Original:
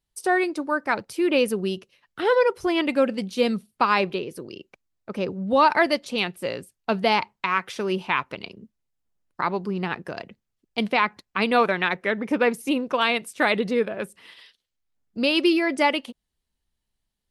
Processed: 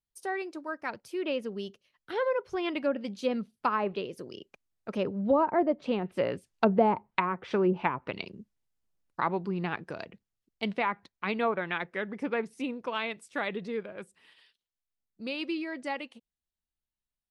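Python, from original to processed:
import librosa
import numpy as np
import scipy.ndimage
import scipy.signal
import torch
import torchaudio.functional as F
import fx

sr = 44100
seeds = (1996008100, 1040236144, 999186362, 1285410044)

y = fx.doppler_pass(x, sr, speed_mps=15, closest_m=22.0, pass_at_s=6.95)
y = fx.env_lowpass_down(y, sr, base_hz=660.0, full_db=-21.5)
y = F.gain(torch.from_numpy(y), 1.5).numpy()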